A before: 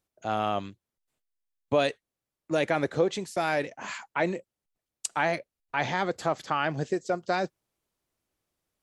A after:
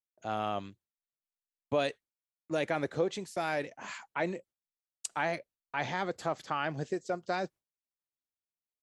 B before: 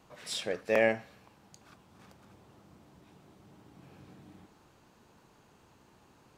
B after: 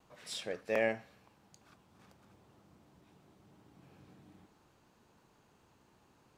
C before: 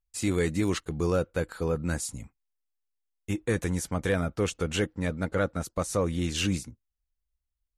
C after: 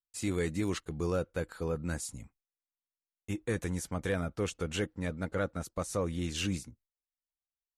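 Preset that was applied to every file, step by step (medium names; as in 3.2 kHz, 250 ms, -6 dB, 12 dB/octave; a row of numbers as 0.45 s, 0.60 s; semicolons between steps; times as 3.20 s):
gate with hold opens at -58 dBFS; trim -5.5 dB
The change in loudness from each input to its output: -5.5 LU, -5.5 LU, -5.5 LU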